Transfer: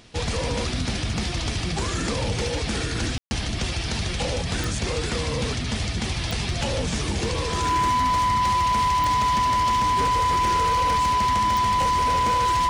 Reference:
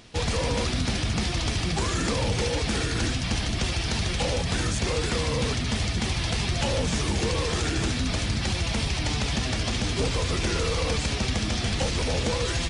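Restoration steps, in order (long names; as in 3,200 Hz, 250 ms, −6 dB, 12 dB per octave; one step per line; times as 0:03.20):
clipped peaks rebuilt −18 dBFS
click removal
notch filter 1,000 Hz, Q 30
ambience match 0:03.18–0:03.31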